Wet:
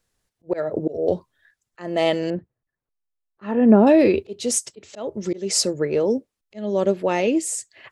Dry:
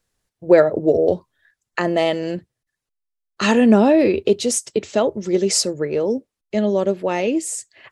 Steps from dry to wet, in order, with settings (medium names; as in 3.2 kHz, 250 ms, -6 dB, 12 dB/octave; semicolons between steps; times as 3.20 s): slow attack 305 ms; 2.30–3.87 s: low-pass 1.3 kHz 12 dB/octave